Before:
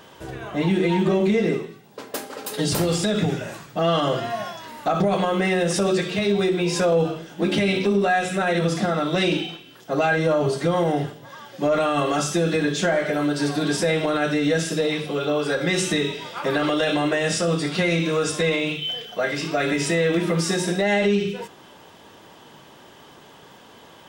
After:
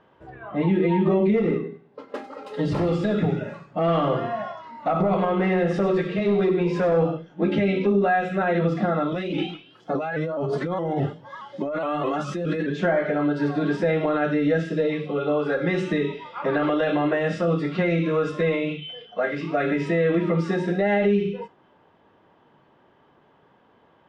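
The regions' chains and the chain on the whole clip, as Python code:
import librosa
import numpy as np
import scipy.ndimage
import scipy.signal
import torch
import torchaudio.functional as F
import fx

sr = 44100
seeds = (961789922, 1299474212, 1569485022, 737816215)

y = fx.chain(x, sr, fx.overload_stage(gain_db=16.5),
    fx.echo_feedback(ms=96, feedback_pct=44, wet_db=-11.0), at=(1.36, 7.17))
y = fx.chain(y, sr, fx.high_shelf(hz=5100.0, db=8.0),
    fx.over_compress(threshold_db=-25.0, ratio=-1.0),
    fx.vibrato_shape(shape='saw_up', rate_hz=4.8, depth_cents=100.0), at=(9.12, 12.7))
y = fx.noise_reduce_blind(y, sr, reduce_db=10)
y = scipy.signal.sosfilt(scipy.signal.butter(2, 1800.0, 'lowpass', fs=sr, output='sos'), y)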